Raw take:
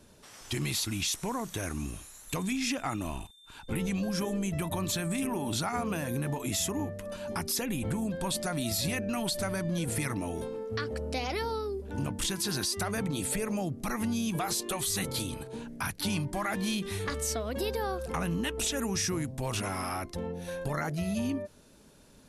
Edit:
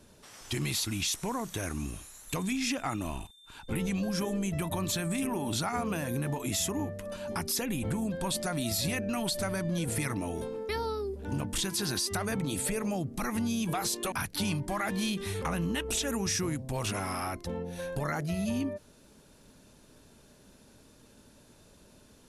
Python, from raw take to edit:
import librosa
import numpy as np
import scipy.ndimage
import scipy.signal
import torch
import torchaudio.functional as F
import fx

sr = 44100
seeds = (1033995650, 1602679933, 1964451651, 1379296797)

y = fx.edit(x, sr, fx.cut(start_s=10.69, length_s=0.66),
    fx.cut(start_s=14.78, length_s=0.99),
    fx.cut(start_s=17.07, length_s=1.04), tone=tone)